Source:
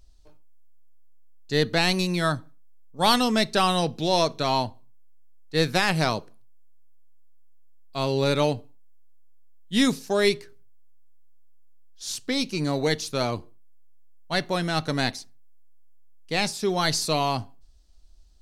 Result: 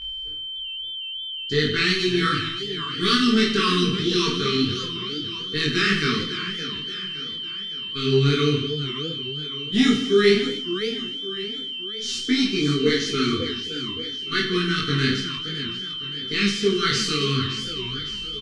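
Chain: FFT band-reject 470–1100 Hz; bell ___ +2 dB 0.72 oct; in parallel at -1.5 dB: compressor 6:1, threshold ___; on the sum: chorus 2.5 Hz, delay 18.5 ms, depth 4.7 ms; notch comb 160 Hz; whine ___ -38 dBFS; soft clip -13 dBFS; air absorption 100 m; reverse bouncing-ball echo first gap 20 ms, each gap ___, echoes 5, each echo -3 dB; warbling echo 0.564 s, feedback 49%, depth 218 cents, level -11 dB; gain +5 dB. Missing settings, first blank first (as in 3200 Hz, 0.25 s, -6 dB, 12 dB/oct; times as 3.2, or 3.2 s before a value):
5800 Hz, -33 dBFS, 3100 Hz, 1.5×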